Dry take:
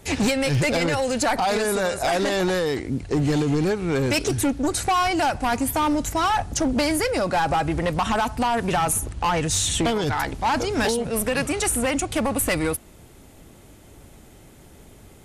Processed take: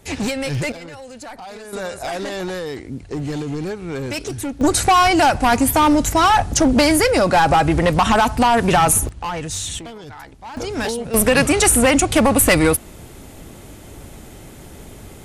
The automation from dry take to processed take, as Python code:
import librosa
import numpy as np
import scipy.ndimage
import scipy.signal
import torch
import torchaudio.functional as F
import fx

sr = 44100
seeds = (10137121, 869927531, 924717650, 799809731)

y = fx.gain(x, sr, db=fx.steps((0.0, -1.5), (0.72, -13.5), (1.73, -4.0), (4.61, 7.5), (9.09, -3.5), (9.79, -13.0), (10.57, -1.0), (11.14, 9.0)))